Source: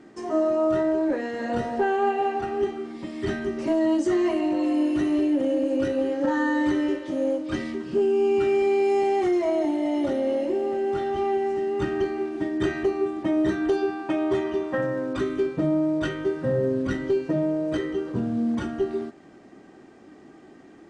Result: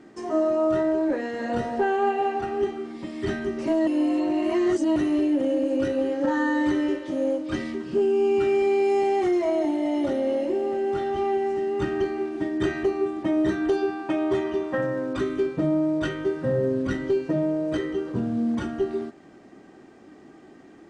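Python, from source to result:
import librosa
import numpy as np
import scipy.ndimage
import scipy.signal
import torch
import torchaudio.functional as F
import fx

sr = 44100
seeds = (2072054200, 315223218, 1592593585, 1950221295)

y = fx.edit(x, sr, fx.reverse_span(start_s=3.87, length_s=1.09), tone=tone)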